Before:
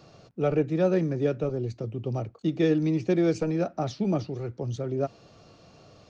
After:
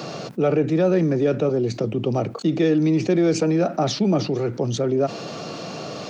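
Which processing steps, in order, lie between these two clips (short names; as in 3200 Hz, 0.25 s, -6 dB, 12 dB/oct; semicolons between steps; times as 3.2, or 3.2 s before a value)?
HPF 150 Hz 24 dB/oct; in parallel at 0 dB: limiter -19.5 dBFS, peak gain reduction 7.5 dB; on the sum: fast leveller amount 50%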